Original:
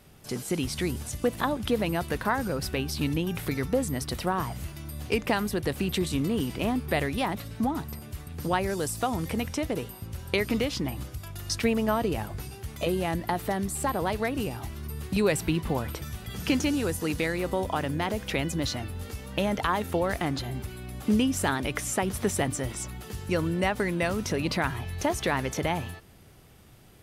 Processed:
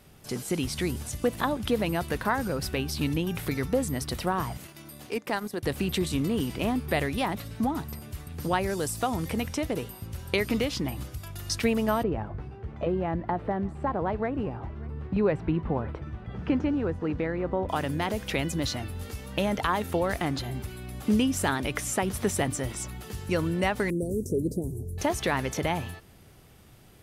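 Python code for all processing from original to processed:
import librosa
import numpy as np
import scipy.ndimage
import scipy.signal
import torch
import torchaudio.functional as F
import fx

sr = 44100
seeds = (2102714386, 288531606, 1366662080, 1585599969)

y = fx.chain(x, sr, fx.highpass(hz=210.0, slope=12),
    fx.dynamic_eq(hz=2800.0, q=2.1, threshold_db=-46.0, ratio=4.0, max_db=-5),
    fx.transient(attack_db=-6, sustain_db=-11), at=(4.57, 5.63))
y = fx.chain(y, sr, fx.lowpass(hz=1400.0, slope=12),
    fx.echo_single(ms=586, db=-22.5), at=(12.03, 17.69))
y = fx.chain(y, sr, fx.ellip_bandstop(low_hz=430.0, high_hz=7800.0, order=3, stop_db=60),
    fx.peak_eq(hz=430.0, db=5.0, octaves=0.71), at=(23.9, 24.98))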